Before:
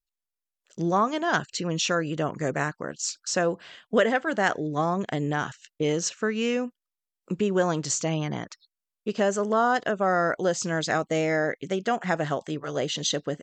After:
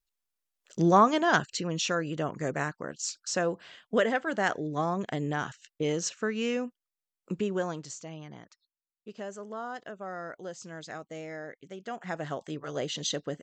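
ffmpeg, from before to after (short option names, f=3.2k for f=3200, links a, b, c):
-af "volume=13.5dB,afade=t=out:st=1.02:d=0.68:silence=0.446684,afade=t=out:st=7.33:d=0.61:silence=0.266073,afade=t=in:st=11.74:d=0.88:silence=0.298538"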